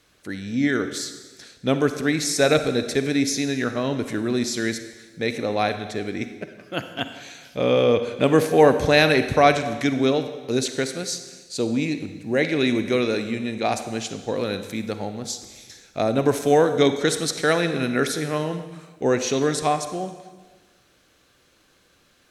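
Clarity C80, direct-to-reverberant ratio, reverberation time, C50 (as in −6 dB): 11.5 dB, 9.0 dB, 1.3 s, 9.5 dB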